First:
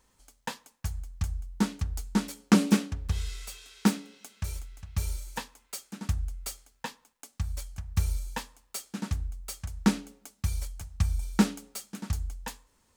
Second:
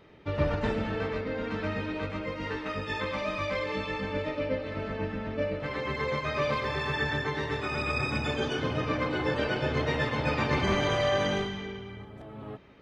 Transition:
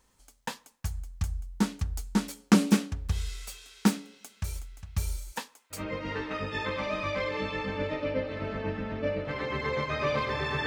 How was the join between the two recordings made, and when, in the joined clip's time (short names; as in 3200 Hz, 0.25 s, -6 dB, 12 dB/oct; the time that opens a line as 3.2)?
first
5.31–5.84 HPF 160 Hz -> 750 Hz
5.77 switch to second from 2.12 s, crossfade 0.14 s